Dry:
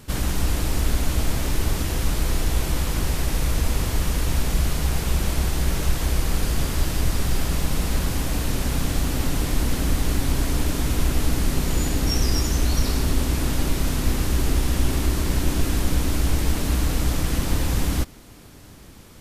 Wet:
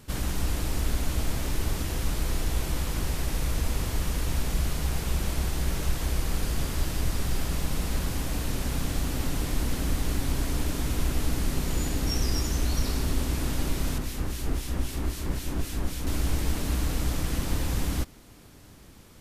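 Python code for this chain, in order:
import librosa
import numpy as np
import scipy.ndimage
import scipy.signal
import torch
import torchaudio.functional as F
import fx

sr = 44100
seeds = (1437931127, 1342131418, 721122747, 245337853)

y = fx.harmonic_tremolo(x, sr, hz=3.8, depth_pct=70, crossover_hz=2000.0, at=(13.98, 16.07))
y = y * librosa.db_to_amplitude(-5.5)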